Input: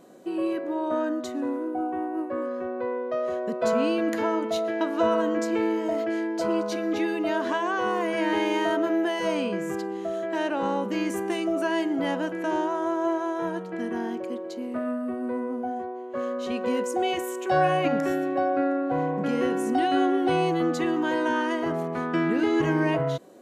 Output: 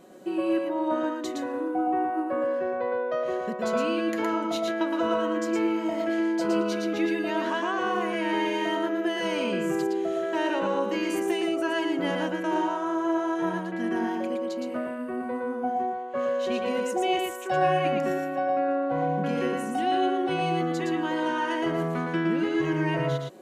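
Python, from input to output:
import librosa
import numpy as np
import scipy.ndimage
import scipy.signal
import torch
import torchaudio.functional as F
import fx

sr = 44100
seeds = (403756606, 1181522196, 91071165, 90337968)

p1 = fx.peak_eq(x, sr, hz=2600.0, db=3.0, octaves=0.77)
p2 = p1 + 0.34 * np.pad(p1, (int(5.4 * sr / 1000.0), 0))[:len(p1)]
p3 = fx.rider(p2, sr, range_db=3, speed_s=0.5)
p4 = p3 + fx.echo_single(p3, sr, ms=115, db=-3.5, dry=0)
y = F.gain(torch.from_numpy(p4), -3.0).numpy()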